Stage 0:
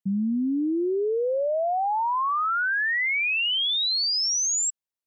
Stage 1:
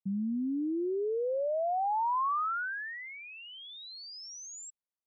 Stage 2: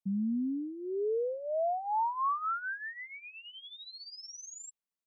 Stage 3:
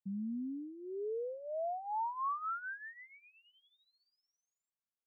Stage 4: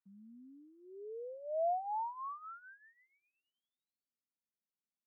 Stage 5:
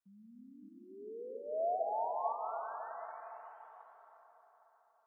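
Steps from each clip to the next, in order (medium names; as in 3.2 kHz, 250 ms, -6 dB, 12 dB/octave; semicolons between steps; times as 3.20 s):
resonant high shelf 1.7 kHz -12.5 dB, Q 1.5; trim -7.5 dB
comb 4.5 ms, depth 62%; trim -3 dB
four-pole ladder low-pass 2.1 kHz, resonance 25%; trim -1.5 dB
band-pass sweep 1.3 kHz -> 220 Hz, 0.54–3.94 s; trim +5 dB
plate-style reverb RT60 4.5 s, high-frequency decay 0.55×, pre-delay 120 ms, DRR -0.5 dB; trim -1.5 dB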